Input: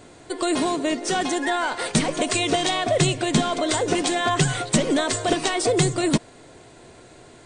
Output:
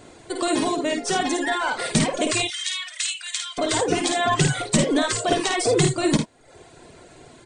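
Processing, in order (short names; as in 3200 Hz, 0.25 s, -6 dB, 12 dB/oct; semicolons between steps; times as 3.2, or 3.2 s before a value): 2.42–3.58 Bessel high-pass 2300 Hz, order 6; on a send: early reflections 53 ms -4 dB, 79 ms -8.5 dB; on the sum: reverb removal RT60 0.63 s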